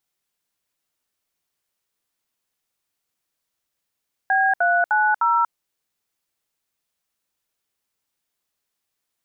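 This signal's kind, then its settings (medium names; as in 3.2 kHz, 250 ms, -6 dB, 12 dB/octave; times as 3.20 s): DTMF "B390", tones 237 ms, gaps 67 ms, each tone -18 dBFS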